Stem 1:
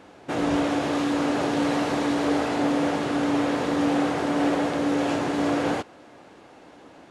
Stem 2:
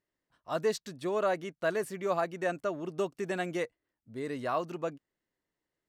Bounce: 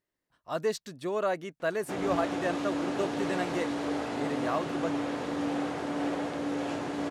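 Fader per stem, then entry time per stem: −8.5, 0.0 decibels; 1.60, 0.00 seconds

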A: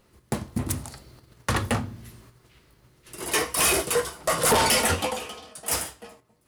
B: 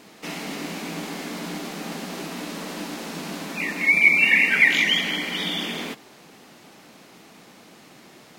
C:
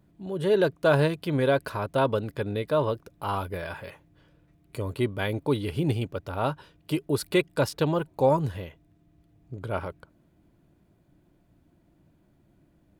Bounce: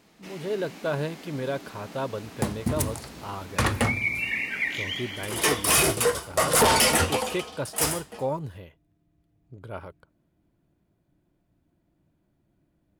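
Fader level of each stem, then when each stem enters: +1.0, −11.5, −7.0 decibels; 2.10, 0.00, 0.00 seconds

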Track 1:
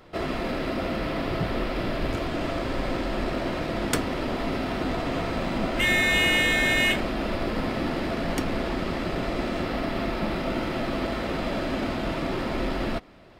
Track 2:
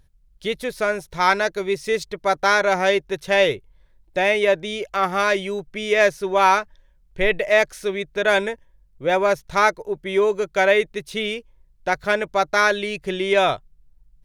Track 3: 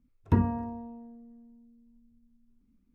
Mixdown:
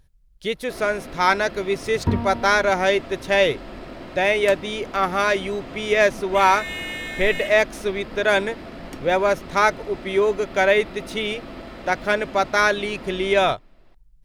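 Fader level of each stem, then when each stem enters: −9.0, −0.5, +2.0 decibels; 0.55, 0.00, 1.75 seconds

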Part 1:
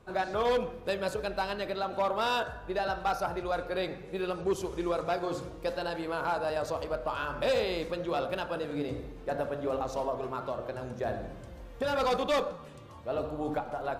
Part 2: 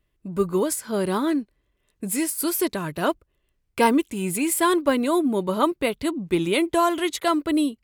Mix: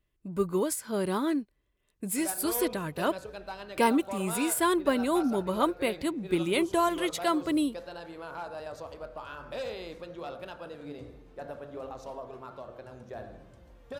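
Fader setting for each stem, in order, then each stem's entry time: −8.5, −5.5 decibels; 2.10, 0.00 seconds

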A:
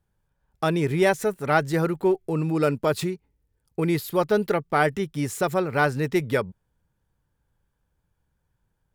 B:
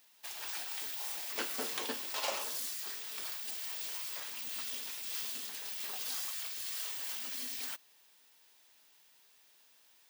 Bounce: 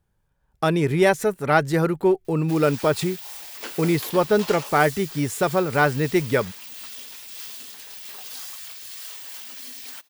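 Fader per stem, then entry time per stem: +2.5, +2.0 decibels; 0.00, 2.25 seconds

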